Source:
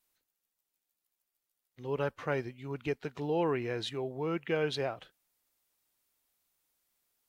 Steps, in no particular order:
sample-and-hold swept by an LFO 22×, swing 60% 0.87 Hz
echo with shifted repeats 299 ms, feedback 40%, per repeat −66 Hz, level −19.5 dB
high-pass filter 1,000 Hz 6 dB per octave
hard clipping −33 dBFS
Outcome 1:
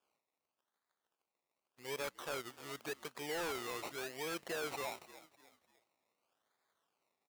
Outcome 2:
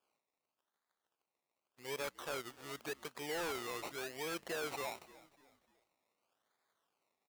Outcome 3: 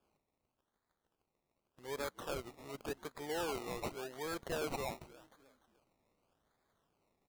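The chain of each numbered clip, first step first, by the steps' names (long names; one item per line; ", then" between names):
sample-and-hold swept by an LFO, then echo with shifted repeats, then high-pass filter, then hard clipping
sample-and-hold swept by an LFO, then high-pass filter, then hard clipping, then echo with shifted repeats
high-pass filter, then hard clipping, then echo with shifted repeats, then sample-and-hold swept by an LFO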